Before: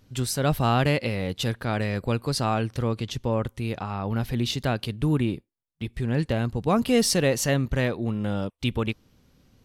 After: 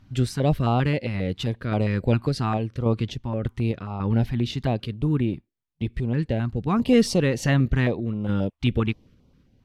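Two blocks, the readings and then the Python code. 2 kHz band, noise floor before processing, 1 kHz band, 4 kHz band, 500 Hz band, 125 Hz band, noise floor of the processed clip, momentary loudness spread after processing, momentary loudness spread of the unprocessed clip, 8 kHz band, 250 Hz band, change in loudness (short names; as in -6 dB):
-1.0 dB, -67 dBFS, -1.5 dB, -4.0 dB, 0.0 dB, +3.0 dB, -67 dBFS, 7 LU, 9 LU, -8.0 dB, +2.5 dB, +1.5 dB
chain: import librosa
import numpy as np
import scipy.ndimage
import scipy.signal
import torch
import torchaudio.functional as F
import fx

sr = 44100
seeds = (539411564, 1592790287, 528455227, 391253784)

y = fx.high_shelf(x, sr, hz=7900.0, db=-11.0)
y = fx.tremolo_random(y, sr, seeds[0], hz=3.5, depth_pct=55)
y = fx.high_shelf(y, sr, hz=3200.0, db=-9.0)
y = fx.filter_held_notch(y, sr, hz=7.5, low_hz=470.0, high_hz=1700.0)
y = y * 10.0 ** (6.0 / 20.0)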